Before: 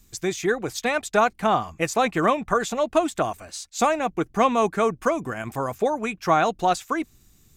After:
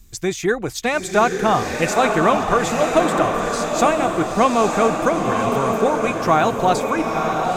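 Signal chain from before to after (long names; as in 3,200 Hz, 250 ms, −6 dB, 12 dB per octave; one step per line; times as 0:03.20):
low-shelf EQ 93 Hz +9 dB
on a send: feedback delay with all-pass diffusion 945 ms, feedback 50%, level −3 dB
on the sum: level +3 dB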